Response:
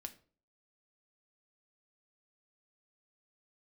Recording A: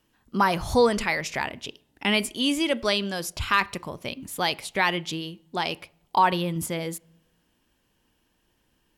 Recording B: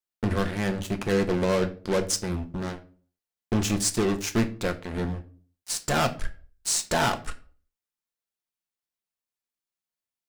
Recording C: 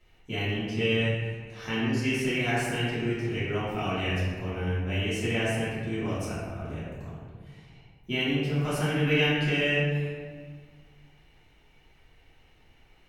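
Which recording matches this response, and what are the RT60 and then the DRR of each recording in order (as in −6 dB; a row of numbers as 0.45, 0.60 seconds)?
B; non-exponential decay, 0.45 s, 1.6 s; 21.0, 6.5, −11.0 decibels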